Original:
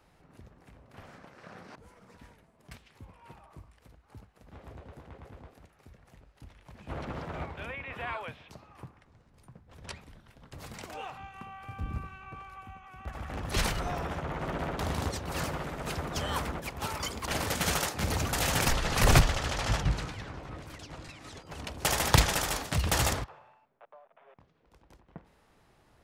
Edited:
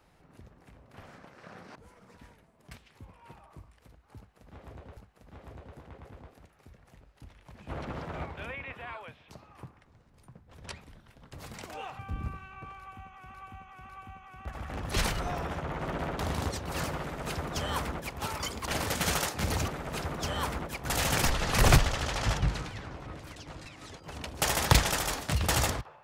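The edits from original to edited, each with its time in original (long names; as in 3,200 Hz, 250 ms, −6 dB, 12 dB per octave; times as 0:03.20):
0:04.17–0:04.97: repeat, 2 plays
0:07.92–0:08.48: clip gain −5.5 dB
0:11.19–0:11.69: remove
0:12.49–0:13.04: repeat, 3 plays
0:15.61–0:16.78: duplicate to 0:18.28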